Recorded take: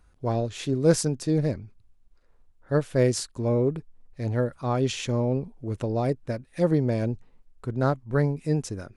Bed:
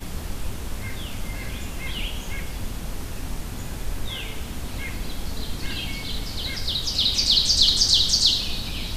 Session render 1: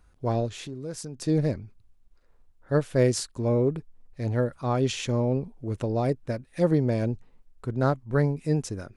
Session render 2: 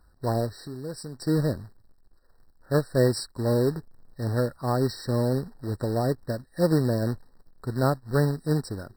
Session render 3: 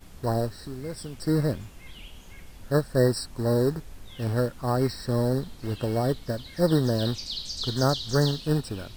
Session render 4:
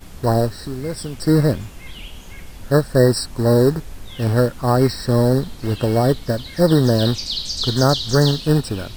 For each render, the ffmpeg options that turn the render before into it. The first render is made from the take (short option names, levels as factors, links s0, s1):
-filter_complex "[0:a]asettb=1/sr,asplit=3[s0][s1][s2];[s0]atrim=end=0.494[s3];[s1]atrim=start=0.49:end=1.22,asetpts=PTS-STARTPTS,afade=t=in:d=0.004:c=qsin,afade=t=out:st=0.726:d=0.004:c=qsin,acompressor=threshold=0.0141:ratio=3:attack=3.2:release=140:knee=1:detection=peak[s4];[s2]atrim=start=1.216[s5];[s3][s4]acrossfade=d=0.004:c1=hsin:c2=qsin[s6];[s6][s5]acrossfade=d=0.004:c1=qsin:c2=hsin"
-af "acrusher=bits=3:mode=log:mix=0:aa=0.000001,afftfilt=real='re*eq(mod(floor(b*sr/1024/1900),2),0)':imag='im*eq(mod(floor(b*sr/1024/1900),2),0)':win_size=1024:overlap=0.75"
-filter_complex "[1:a]volume=0.168[s0];[0:a][s0]amix=inputs=2:normalize=0"
-af "volume=2.82,alimiter=limit=0.708:level=0:latency=1"